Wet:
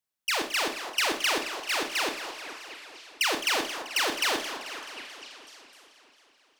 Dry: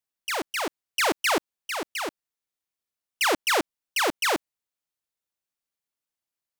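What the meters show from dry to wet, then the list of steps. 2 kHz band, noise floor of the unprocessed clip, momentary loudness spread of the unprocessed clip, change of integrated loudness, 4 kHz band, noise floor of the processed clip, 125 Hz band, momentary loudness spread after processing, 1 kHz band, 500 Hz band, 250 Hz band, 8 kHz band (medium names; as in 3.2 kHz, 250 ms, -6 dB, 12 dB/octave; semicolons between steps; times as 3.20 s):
-1.0 dB, under -85 dBFS, 9 LU, -1.5 dB, +2.5 dB, -65 dBFS, no reading, 17 LU, -3.5 dB, -4.5 dB, -4.5 dB, -0.5 dB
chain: dynamic bell 3.8 kHz, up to +6 dB, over -39 dBFS, Q 0.74; compression, threshold -24 dBFS, peak gain reduction 8 dB; on a send: repeats whose band climbs or falls 251 ms, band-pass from 820 Hz, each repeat 0.7 oct, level -9.5 dB; on the sum: Schroeder reverb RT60 0.37 s, combs from 26 ms, DRR 4.5 dB; modulated delay 217 ms, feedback 69%, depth 201 cents, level -12 dB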